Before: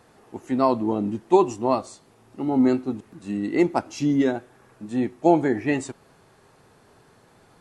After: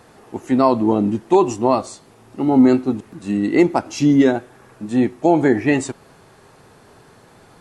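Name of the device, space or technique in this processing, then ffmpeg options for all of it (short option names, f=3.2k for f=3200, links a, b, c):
clipper into limiter: -af "asoftclip=type=hard:threshold=-5dB,alimiter=limit=-11dB:level=0:latency=1:release=84,volume=7.5dB"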